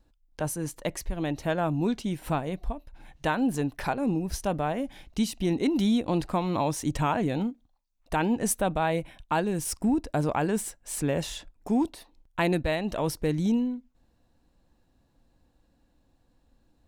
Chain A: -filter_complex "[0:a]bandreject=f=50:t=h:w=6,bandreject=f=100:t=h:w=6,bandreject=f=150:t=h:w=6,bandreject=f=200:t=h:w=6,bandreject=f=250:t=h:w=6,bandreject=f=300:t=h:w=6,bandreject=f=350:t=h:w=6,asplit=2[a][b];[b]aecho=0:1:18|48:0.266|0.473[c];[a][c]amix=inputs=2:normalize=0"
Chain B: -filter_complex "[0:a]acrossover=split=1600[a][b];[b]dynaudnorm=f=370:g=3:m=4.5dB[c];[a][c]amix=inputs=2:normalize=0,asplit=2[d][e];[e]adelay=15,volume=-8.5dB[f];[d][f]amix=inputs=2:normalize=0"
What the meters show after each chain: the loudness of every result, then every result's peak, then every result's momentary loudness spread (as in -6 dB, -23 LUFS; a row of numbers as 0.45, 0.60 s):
-28.0, -27.5 LUFS; -12.0, -9.0 dBFS; 8, 9 LU